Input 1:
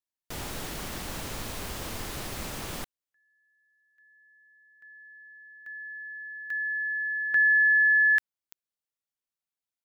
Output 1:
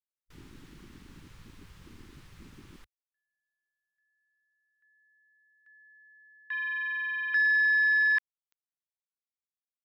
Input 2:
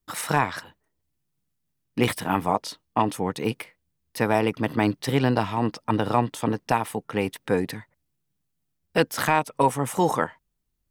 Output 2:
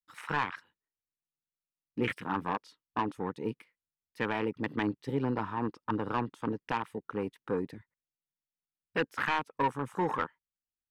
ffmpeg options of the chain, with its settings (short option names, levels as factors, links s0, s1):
-filter_complex "[0:a]afwtdn=0.0355,asplit=2[s0][s1];[s1]highpass=f=720:p=1,volume=4.47,asoftclip=type=tanh:threshold=0.473[s2];[s0][s2]amix=inputs=2:normalize=0,lowpass=f=2600:p=1,volume=0.501,equalizer=f=670:t=o:w=0.67:g=-13.5,volume=0.447"